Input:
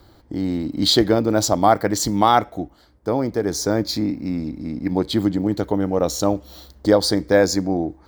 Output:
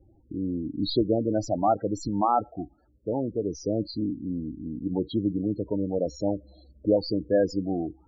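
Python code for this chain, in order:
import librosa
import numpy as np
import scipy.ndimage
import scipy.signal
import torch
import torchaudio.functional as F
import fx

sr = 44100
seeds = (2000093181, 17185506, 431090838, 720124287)

y = fx.tracing_dist(x, sr, depth_ms=0.028)
y = fx.high_shelf(y, sr, hz=3100.0, db=-6.0)
y = fx.spec_topn(y, sr, count=16)
y = y * 10.0 ** (-6.5 / 20.0)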